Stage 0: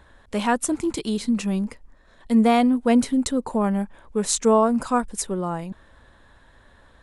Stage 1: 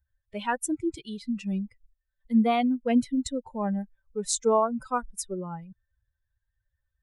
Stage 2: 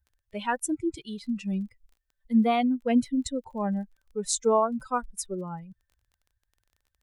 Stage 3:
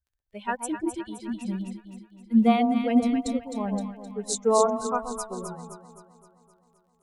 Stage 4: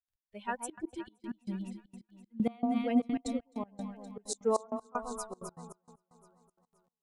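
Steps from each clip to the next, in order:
expander on every frequency bin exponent 2; trim -2.5 dB
crackle 24 per s -49 dBFS
echo whose repeats swap between lows and highs 130 ms, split 920 Hz, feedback 78%, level -4 dB; upward expansion 1.5:1, over -44 dBFS; trim +2.5 dB
trance gate ".x..xxxxx.x.xx." 194 bpm -24 dB; trim -6.5 dB

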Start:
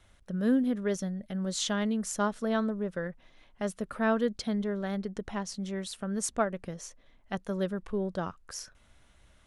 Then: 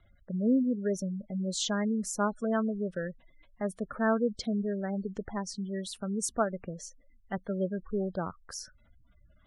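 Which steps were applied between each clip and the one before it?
spectral gate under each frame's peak -20 dB strong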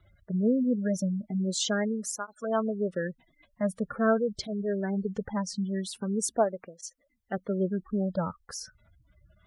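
cancelling through-zero flanger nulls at 0.22 Hz, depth 4.3 ms; trim +5.5 dB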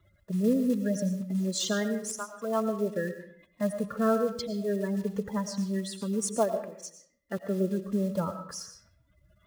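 block-companded coder 5-bit; comb of notches 760 Hz; on a send at -8.5 dB: reverberation RT60 0.60 s, pre-delay 65 ms

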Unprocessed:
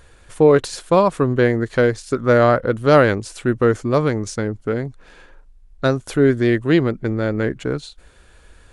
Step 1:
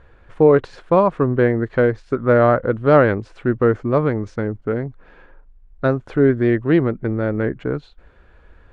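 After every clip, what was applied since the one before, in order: low-pass 1.9 kHz 12 dB/octave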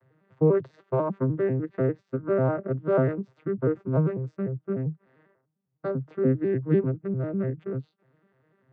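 vocoder on a broken chord minor triad, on C3, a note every 99 ms; trim -7.5 dB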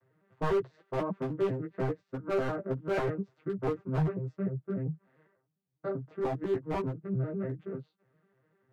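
wavefolder -19.5 dBFS; chorus voices 4, 0.84 Hz, delay 14 ms, depth 3.8 ms; trim -2 dB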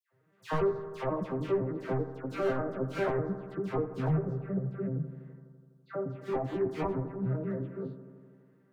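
phase dispersion lows, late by 111 ms, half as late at 1.6 kHz; on a send: bucket-brigade echo 83 ms, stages 1024, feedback 76%, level -13 dB

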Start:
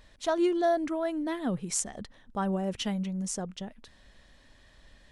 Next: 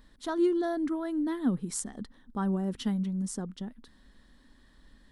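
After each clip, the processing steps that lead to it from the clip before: fifteen-band graphic EQ 100 Hz -9 dB, 250 Hz +7 dB, 630 Hz -10 dB, 2.5 kHz -11 dB, 6.3 kHz -8 dB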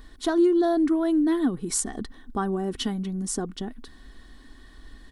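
compression 3:1, threshold -31 dBFS, peak gain reduction 7.5 dB; comb 2.7 ms, depth 49%; trim +9 dB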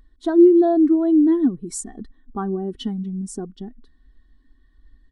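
spectral contrast expander 1.5:1; trim +5 dB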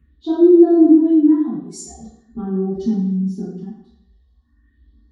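phase shifter stages 4, 0.43 Hz, lowest notch 230–3000 Hz; reverberation RT60 0.70 s, pre-delay 3 ms, DRR -12 dB; trim -17 dB

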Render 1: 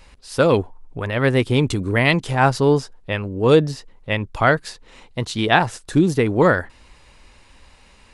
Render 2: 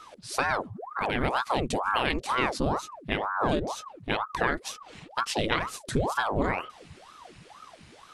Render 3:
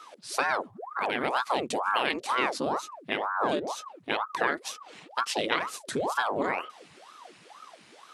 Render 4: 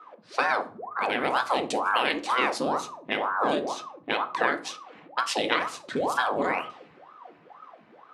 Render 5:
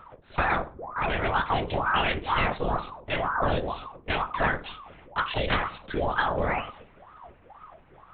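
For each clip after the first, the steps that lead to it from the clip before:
peaking EQ 600 Hz -6.5 dB 1 oct; compression 6:1, threshold -22 dBFS, peak gain reduction 11 dB; ring modulator with a swept carrier 690 Hz, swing 85%, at 2.1 Hz; trim +1.5 dB
high-pass 290 Hz 12 dB/octave
level-controlled noise filter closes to 1.1 kHz, open at -25.5 dBFS; bass shelf 160 Hz -4.5 dB; reverberation RT60 0.45 s, pre-delay 4 ms, DRR 8.5 dB; trim +2 dB
LPC vocoder at 8 kHz whisper

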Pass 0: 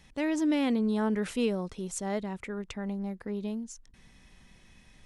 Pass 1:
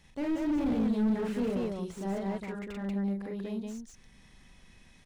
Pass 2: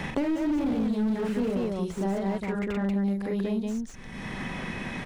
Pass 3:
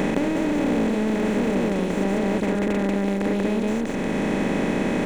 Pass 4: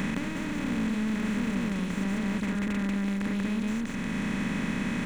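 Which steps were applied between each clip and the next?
loudspeakers at several distances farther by 14 m -3 dB, 64 m -2 dB; slew-rate limiter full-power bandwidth 23 Hz; trim -3.5 dB
three bands compressed up and down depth 100%; trim +3.5 dB
spectral levelling over time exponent 0.2; trim -1 dB
high-order bell 510 Hz -12 dB; trim -4 dB

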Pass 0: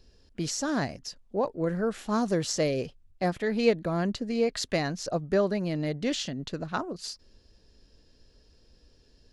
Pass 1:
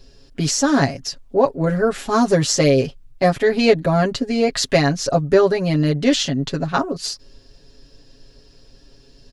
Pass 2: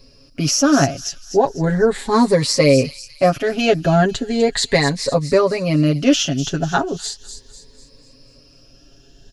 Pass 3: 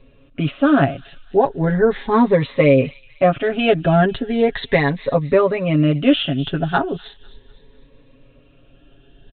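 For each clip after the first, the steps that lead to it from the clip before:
comb 7.3 ms, depth 90%; trim +9 dB
drifting ripple filter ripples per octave 0.94, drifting +0.37 Hz, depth 10 dB; feedback echo behind a high-pass 248 ms, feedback 43%, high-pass 4.7 kHz, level -7 dB
resampled via 8 kHz

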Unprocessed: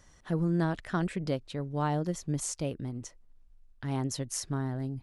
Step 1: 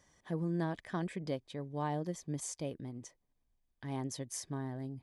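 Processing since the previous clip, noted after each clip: comb of notches 1.4 kHz; trim -5 dB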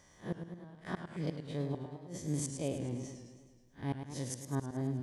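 spectral blur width 105 ms; inverted gate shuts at -32 dBFS, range -25 dB; modulated delay 106 ms, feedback 62%, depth 123 cents, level -8 dB; trim +7 dB

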